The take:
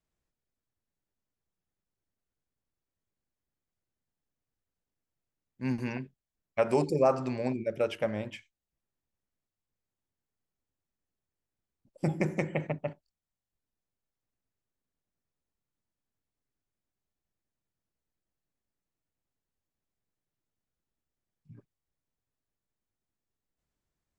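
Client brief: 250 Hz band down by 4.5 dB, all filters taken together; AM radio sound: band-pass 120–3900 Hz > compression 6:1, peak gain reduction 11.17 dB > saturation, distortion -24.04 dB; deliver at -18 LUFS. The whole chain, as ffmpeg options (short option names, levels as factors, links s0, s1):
-af "highpass=120,lowpass=3900,equalizer=f=250:t=o:g=-5.5,acompressor=threshold=0.0282:ratio=6,asoftclip=threshold=0.0841,volume=11.2"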